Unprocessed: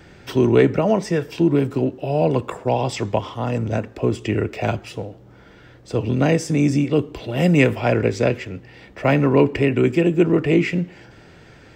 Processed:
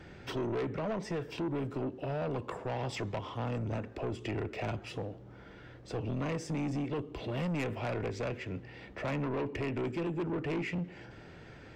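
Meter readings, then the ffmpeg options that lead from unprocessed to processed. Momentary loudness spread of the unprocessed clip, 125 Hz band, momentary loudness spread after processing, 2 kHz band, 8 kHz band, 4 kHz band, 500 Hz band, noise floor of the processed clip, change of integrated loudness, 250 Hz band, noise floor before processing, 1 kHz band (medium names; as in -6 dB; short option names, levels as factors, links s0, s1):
10 LU, -15.0 dB, 10 LU, -15.0 dB, -15.5 dB, -13.0 dB, -17.0 dB, -51 dBFS, -16.5 dB, -17.0 dB, -47 dBFS, -13.5 dB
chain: -af "highshelf=f=6300:g=-11.5,acompressor=threshold=0.0501:ratio=2,asoftclip=type=tanh:threshold=0.0531,volume=0.596"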